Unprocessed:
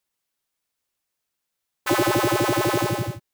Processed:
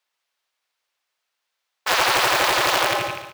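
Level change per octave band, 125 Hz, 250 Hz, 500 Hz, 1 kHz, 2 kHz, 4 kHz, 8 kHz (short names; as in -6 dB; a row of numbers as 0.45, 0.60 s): -12.5, -11.5, -1.5, +4.5, +7.5, +9.5, +4.5 dB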